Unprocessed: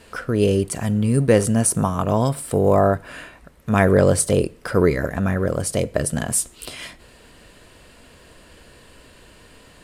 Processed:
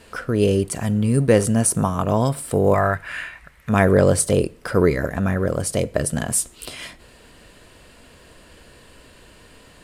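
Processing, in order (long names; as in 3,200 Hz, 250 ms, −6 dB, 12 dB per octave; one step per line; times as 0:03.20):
0:02.74–0:03.69: octave-band graphic EQ 250/500/2,000 Hz −9/−6/+11 dB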